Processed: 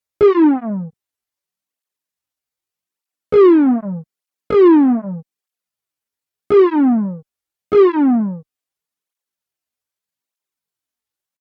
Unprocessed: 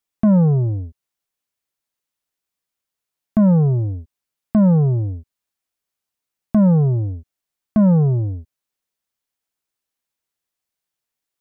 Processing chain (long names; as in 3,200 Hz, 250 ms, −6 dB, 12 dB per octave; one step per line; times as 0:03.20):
pitch shifter +11.5 semitones
harmonic generator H 3 −30 dB, 4 −23 dB, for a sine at −10 dBFS
through-zero flanger with one copy inverted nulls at 0.82 Hz, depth 6.3 ms
level +5 dB